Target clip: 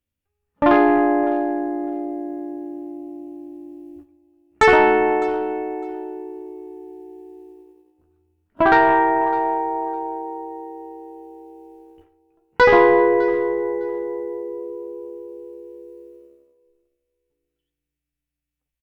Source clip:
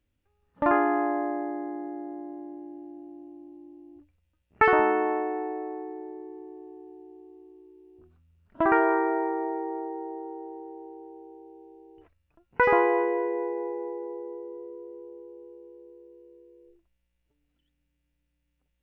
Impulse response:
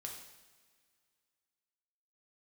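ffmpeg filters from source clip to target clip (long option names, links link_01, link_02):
-filter_complex "[0:a]agate=range=-17dB:threshold=-51dB:ratio=16:detection=peak,aemphasis=mode=production:type=cd,aeval=exprs='0.501*(cos(1*acos(clip(val(0)/0.501,-1,1)))-cos(1*PI/2))+0.0282*(cos(4*acos(clip(val(0)/0.501,-1,1)))-cos(4*PI/2))+0.0562*(cos(5*acos(clip(val(0)/0.501,-1,1)))-cos(5*PI/2))':channel_layout=same,asplit=2[link_01][link_02];[link_02]adelay=14,volume=-6dB[link_03];[link_01][link_03]amix=inputs=2:normalize=0,aecho=1:1:606|1212:0.106|0.018,asplit=2[link_04][link_05];[1:a]atrim=start_sample=2205,afade=type=out:start_time=0.18:duration=0.01,atrim=end_sample=8379[link_06];[link_05][link_06]afir=irnorm=-1:irlink=0,volume=-2dB[link_07];[link_04][link_07]amix=inputs=2:normalize=0,volume=1.5dB"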